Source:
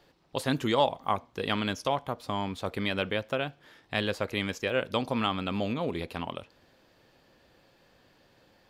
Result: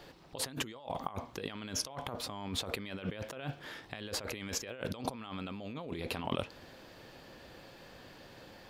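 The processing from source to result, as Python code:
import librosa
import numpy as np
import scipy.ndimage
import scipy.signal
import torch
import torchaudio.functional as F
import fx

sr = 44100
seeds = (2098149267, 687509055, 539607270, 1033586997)

y = fx.over_compress(x, sr, threshold_db=-41.0, ratio=-1.0)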